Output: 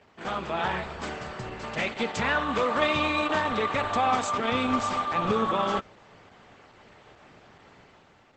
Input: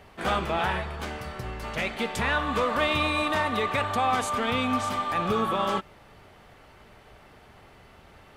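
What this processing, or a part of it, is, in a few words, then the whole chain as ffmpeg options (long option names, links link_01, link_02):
video call: -filter_complex "[0:a]asettb=1/sr,asplit=3[link_01][link_02][link_03];[link_01]atrim=end=0.754[link_04];[link_02]atrim=start=0.75:end=1.48,asetpts=PTS-STARTPTS,afade=type=in:duration=0.004:curve=qsin,afade=type=out:start_time=0.726:duration=0.004:curve=qsin,equalizer=frequency=8900:width=2.2:gain=5[link_05];[link_03]atrim=start=1.476[link_06];[link_04][link_05]acrossfade=duration=0.004:curve1=hsin:curve2=qsin[link_07];[link_07][link_06]acrossfade=duration=0.004:curve1=qsin:curve2=hsin,highpass=110,dynaudnorm=framelen=130:gausssize=9:maxgain=6.5dB,volume=-5dB" -ar 48000 -c:a libopus -b:a 12k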